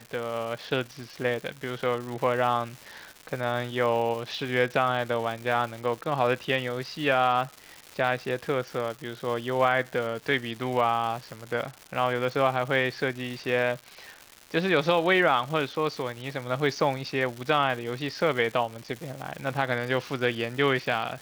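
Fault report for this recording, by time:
crackle 310/s -34 dBFS

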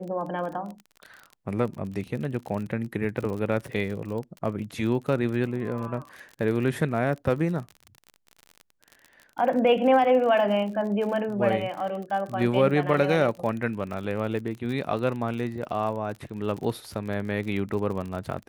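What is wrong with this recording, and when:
crackle 45/s -33 dBFS

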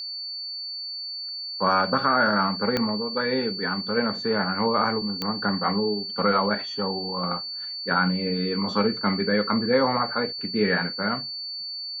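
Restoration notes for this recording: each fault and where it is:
tone 4500 Hz -31 dBFS
2.77 pop -10 dBFS
5.22 pop -13 dBFS

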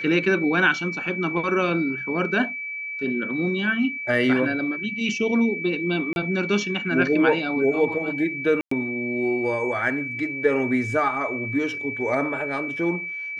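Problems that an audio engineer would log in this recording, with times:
tone 2300 Hz -29 dBFS
6.13–6.16 gap 31 ms
8.61–8.71 gap 0.104 s

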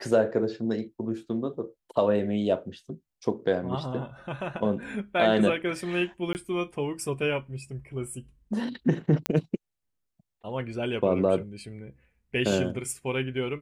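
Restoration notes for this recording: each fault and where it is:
6.33–6.35 gap 19 ms
9.26 pop -9 dBFS

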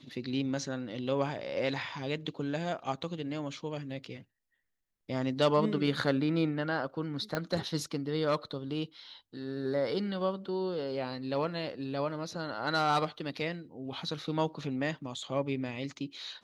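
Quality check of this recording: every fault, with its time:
7.35 pop -17 dBFS

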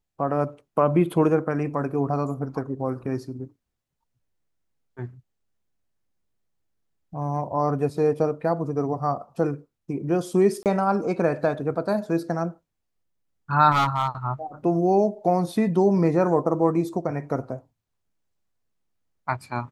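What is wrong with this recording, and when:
10.63–10.66 gap 28 ms
13.71–14.08 clipped -16.5 dBFS

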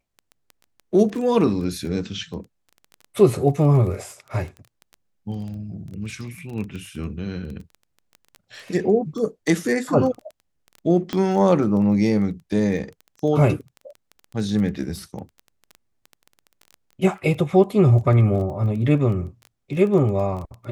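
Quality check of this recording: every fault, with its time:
crackle 13/s -30 dBFS
11.13 pop -12 dBFS

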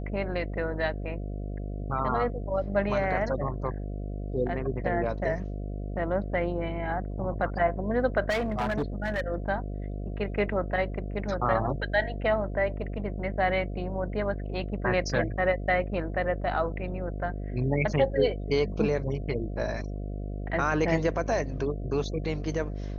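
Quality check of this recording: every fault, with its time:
buzz 50 Hz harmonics 14 -34 dBFS
8.29–9.28 clipped -24 dBFS

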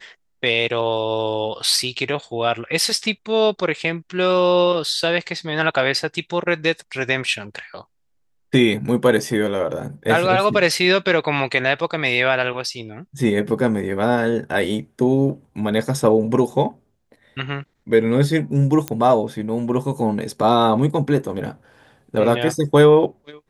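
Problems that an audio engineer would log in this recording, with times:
18.88 pop -7 dBFS

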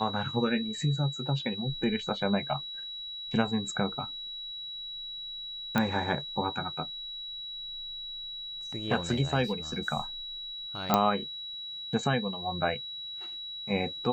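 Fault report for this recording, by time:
tone 3900 Hz -37 dBFS
5.78 pop -13 dBFS
10.94 pop -8 dBFS

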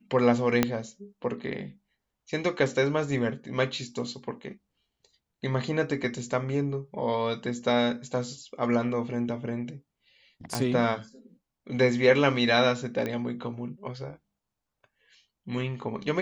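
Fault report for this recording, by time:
0.63 pop -7 dBFS
10.55 pop
13.06 pop -18 dBFS

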